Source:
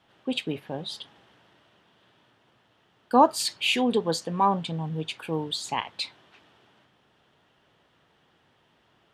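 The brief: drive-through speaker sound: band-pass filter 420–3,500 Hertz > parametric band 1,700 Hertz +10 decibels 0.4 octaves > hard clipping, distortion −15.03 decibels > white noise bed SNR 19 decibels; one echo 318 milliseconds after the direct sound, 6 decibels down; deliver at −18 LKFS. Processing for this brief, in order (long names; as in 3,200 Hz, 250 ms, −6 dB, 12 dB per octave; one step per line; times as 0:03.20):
band-pass filter 420–3,500 Hz
parametric band 1,700 Hz +10 dB 0.4 octaves
single-tap delay 318 ms −6 dB
hard clipping −13.5 dBFS
white noise bed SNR 19 dB
level +10 dB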